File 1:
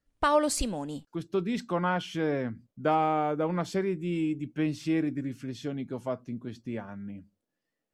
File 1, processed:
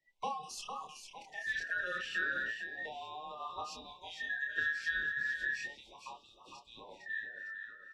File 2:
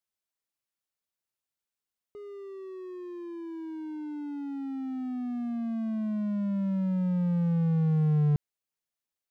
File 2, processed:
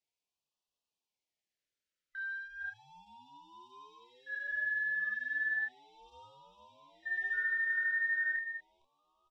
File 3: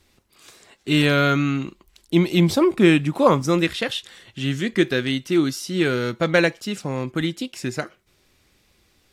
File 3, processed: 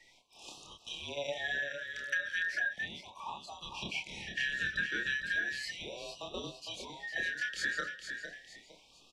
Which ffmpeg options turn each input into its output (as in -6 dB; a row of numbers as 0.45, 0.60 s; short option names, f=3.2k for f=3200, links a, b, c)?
-filter_complex "[0:a]afftfilt=real='real(if(between(b,1,1012),(2*floor((b-1)/92)+1)*92-b,b),0)':imag='imag(if(between(b,1,1012),(2*floor((b-1)/92)+1)*92-b,b),0)*if(between(b,1,1012),-1,1)':win_size=2048:overlap=0.75,adynamicequalizer=threshold=0.00316:dfrequency=190:dqfactor=3:tfrequency=190:tqfactor=3:attack=5:release=100:ratio=0.375:range=2:mode=boostabove:tftype=bell,acrossover=split=350|430|3500[a][b][c][d];[d]alimiter=limit=-24dB:level=0:latency=1:release=255[e];[a][b][c][e]amix=inputs=4:normalize=0,lowpass=5.9k,lowshelf=f=450:g=-3.5,asplit=2[f][g];[g]adelay=28,volume=-3dB[h];[f][h]amix=inputs=2:normalize=0,acompressor=threshold=-32dB:ratio=10,aecho=1:1:456|912|1368|1824|2280:0.422|0.177|0.0744|0.0312|0.0131,afftfilt=real='re*(1-between(b*sr/1024,860*pow(1800/860,0.5+0.5*sin(2*PI*0.35*pts/sr))/1.41,860*pow(1800/860,0.5+0.5*sin(2*PI*0.35*pts/sr))*1.41))':imag='im*(1-between(b*sr/1024,860*pow(1800/860,0.5+0.5*sin(2*PI*0.35*pts/sr))/1.41,860*pow(1800/860,0.5+0.5*sin(2*PI*0.35*pts/sr))*1.41))':win_size=1024:overlap=0.75"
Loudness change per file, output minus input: -7.0, -3.5, -15.5 LU